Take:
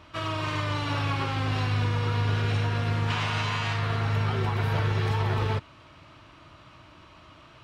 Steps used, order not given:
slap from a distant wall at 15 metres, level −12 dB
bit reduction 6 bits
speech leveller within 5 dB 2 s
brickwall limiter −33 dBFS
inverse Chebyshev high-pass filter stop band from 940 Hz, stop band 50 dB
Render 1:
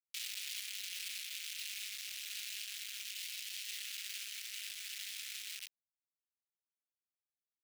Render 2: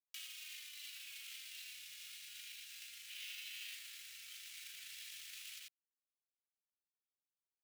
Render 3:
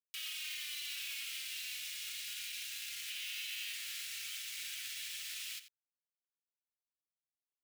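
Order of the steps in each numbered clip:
slap from a distant wall, then brickwall limiter, then bit reduction, then speech leveller, then inverse Chebyshev high-pass filter
bit reduction, then slap from a distant wall, then brickwall limiter, then inverse Chebyshev high-pass filter, then speech leveller
speech leveller, then bit reduction, then inverse Chebyshev high-pass filter, then brickwall limiter, then slap from a distant wall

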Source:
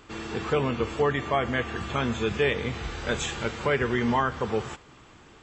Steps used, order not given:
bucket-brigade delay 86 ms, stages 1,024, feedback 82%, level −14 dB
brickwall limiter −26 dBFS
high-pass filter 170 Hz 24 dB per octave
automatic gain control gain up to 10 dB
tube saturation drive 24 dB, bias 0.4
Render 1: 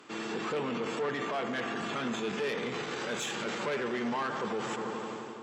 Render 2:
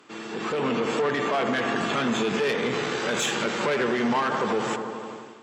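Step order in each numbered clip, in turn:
tube saturation, then automatic gain control, then bucket-brigade delay, then brickwall limiter, then high-pass filter
bucket-brigade delay, then tube saturation, then high-pass filter, then brickwall limiter, then automatic gain control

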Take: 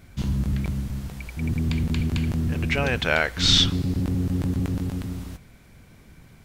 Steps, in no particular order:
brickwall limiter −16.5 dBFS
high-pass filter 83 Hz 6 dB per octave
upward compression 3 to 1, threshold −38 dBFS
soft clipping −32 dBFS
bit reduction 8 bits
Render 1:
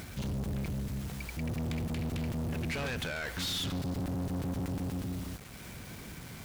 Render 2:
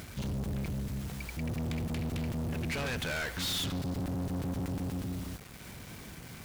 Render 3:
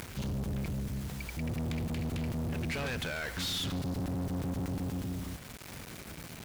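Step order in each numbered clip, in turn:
high-pass filter, then upward compression, then bit reduction, then brickwall limiter, then soft clipping
upward compression, then high-pass filter, then bit reduction, then soft clipping, then brickwall limiter
brickwall limiter, then bit reduction, then high-pass filter, then soft clipping, then upward compression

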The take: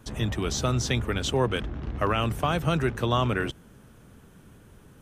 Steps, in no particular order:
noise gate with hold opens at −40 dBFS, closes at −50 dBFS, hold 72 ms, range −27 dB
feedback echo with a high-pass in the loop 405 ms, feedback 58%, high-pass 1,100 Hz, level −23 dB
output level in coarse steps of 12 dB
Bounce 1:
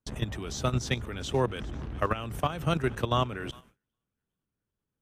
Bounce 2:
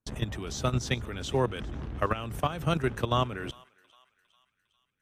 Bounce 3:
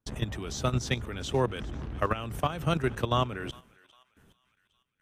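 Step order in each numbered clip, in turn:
feedback echo with a high-pass in the loop, then output level in coarse steps, then noise gate with hold
output level in coarse steps, then noise gate with hold, then feedback echo with a high-pass in the loop
noise gate with hold, then feedback echo with a high-pass in the loop, then output level in coarse steps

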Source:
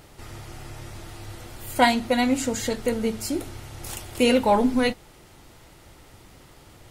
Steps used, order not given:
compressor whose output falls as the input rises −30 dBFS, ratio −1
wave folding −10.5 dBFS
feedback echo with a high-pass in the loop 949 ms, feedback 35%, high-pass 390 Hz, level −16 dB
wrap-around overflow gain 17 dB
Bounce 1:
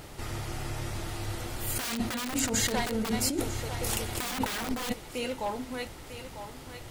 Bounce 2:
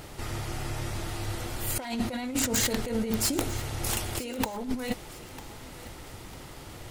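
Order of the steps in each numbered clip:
wave folding, then feedback echo with a high-pass in the loop, then wrap-around overflow, then compressor whose output falls as the input rises
wave folding, then compressor whose output falls as the input rises, then wrap-around overflow, then feedback echo with a high-pass in the loop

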